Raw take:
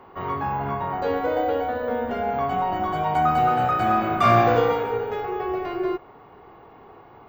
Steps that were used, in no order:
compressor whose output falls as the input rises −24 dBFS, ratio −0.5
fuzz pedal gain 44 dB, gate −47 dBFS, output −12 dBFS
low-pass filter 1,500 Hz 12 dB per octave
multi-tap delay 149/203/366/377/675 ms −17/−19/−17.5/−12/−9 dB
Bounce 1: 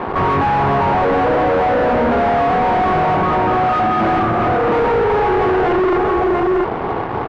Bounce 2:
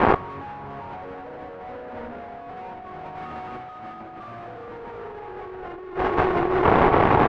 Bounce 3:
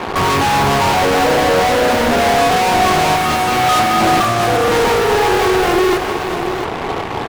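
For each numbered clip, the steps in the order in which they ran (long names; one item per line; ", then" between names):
compressor whose output falls as the input rises, then multi-tap delay, then fuzz pedal, then low-pass filter
fuzz pedal, then multi-tap delay, then compressor whose output falls as the input rises, then low-pass filter
low-pass filter, then compressor whose output falls as the input rises, then fuzz pedal, then multi-tap delay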